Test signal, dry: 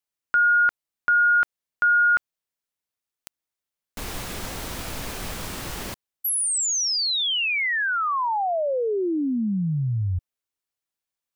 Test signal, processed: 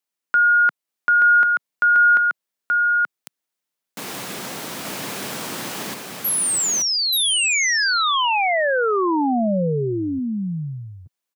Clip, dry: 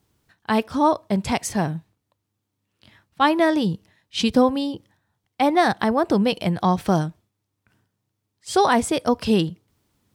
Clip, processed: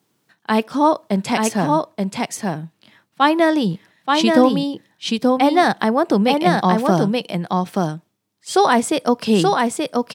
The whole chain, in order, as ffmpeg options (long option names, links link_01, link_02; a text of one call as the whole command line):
ffmpeg -i in.wav -af "highpass=frequency=150:width=0.5412,highpass=frequency=150:width=1.3066,aecho=1:1:879:0.708,volume=3dB" out.wav